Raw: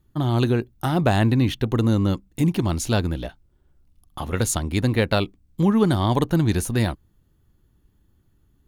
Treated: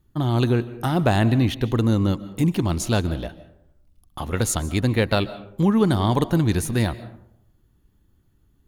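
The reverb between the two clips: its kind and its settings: algorithmic reverb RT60 0.74 s, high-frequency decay 0.45×, pre-delay 105 ms, DRR 15.5 dB

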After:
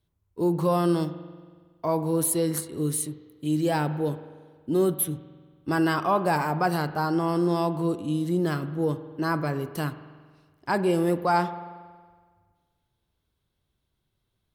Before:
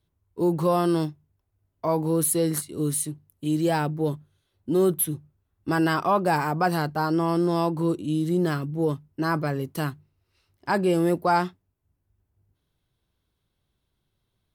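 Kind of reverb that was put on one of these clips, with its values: spring tank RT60 1.6 s, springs 46 ms, chirp 55 ms, DRR 12 dB; trim -1.5 dB

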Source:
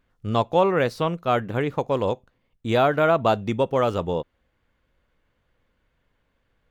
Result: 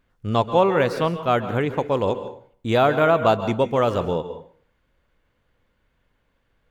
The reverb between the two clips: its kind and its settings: plate-style reverb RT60 0.52 s, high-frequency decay 0.75×, pre-delay 120 ms, DRR 11 dB; trim +1.5 dB

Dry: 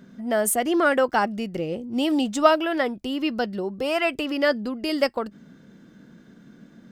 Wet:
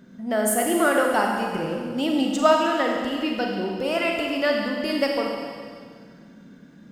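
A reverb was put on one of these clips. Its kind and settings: Schroeder reverb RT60 2 s, combs from 33 ms, DRR 0 dB; trim -2 dB

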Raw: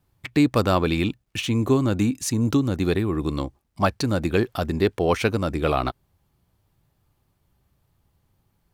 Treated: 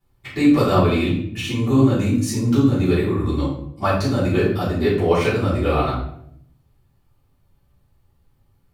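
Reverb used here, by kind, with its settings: simulated room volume 130 m³, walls mixed, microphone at 3.3 m; trim -10 dB

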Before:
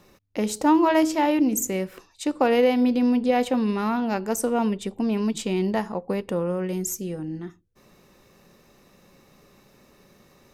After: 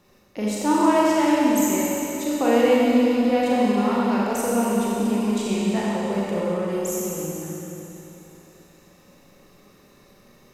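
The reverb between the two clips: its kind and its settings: Schroeder reverb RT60 3.3 s, combs from 30 ms, DRR -6 dB; trim -4.5 dB

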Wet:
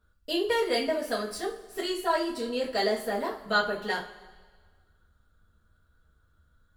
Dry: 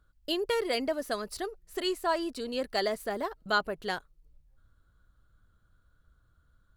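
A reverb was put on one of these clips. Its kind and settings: two-slope reverb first 0.31 s, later 1.6 s, from -18 dB, DRR -7 dB; trim -5 dB

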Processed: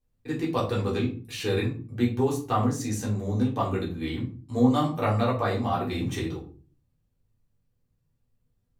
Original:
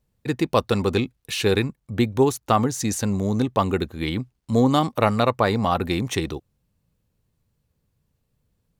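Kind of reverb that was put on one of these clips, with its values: simulated room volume 230 m³, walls furnished, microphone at 3.7 m; trim -14 dB

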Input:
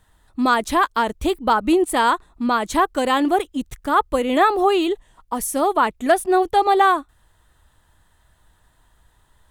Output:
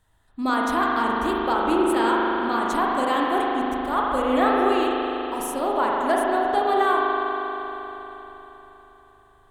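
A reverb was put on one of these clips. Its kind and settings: spring tank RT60 3.9 s, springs 39 ms, chirp 60 ms, DRR -4 dB; trim -8 dB

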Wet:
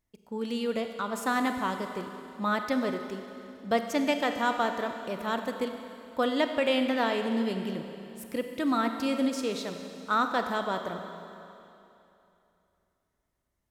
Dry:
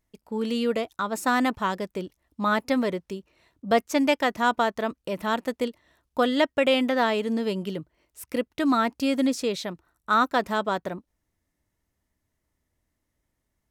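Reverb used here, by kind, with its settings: Schroeder reverb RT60 2.9 s, combs from 31 ms, DRR 6 dB; trim -5 dB

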